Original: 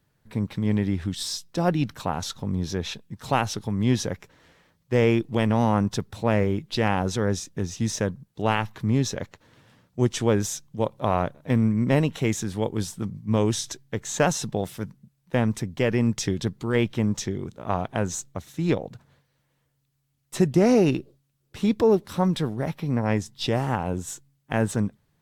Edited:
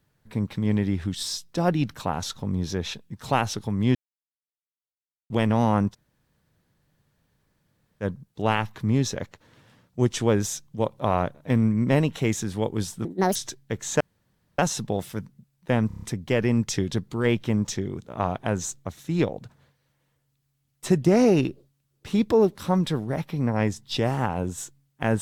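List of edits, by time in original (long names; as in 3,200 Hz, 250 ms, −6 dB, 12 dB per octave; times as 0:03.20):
0:03.95–0:05.30: silence
0:05.92–0:08.03: fill with room tone, crossfade 0.06 s
0:13.05–0:13.58: play speed 174%
0:14.23: splice in room tone 0.58 s
0:15.52: stutter 0.03 s, 6 plays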